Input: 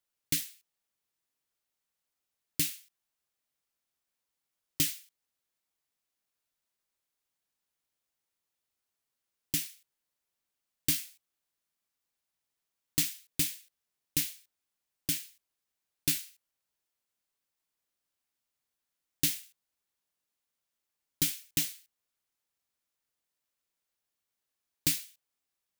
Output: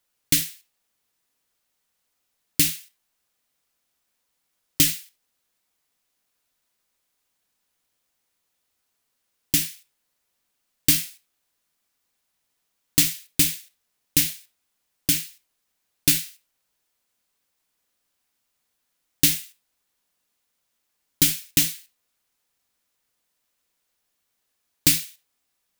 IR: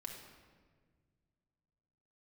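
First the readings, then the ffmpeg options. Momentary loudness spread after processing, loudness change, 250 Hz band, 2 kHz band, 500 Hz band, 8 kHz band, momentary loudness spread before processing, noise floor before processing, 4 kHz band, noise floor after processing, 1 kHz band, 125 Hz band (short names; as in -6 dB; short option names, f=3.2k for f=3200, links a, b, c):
17 LU, +10.5 dB, +11.0 dB, +10.5 dB, +10.0 dB, +10.5 dB, 17 LU, under -85 dBFS, +10.5 dB, -76 dBFS, n/a, +10.0 dB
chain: -filter_complex "[0:a]asplit=2[a][b];[1:a]atrim=start_sample=2205,atrim=end_sample=4410[c];[b][c]afir=irnorm=-1:irlink=0,volume=-1dB[d];[a][d]amix=inputs=2:normalize=0,volume=7dB"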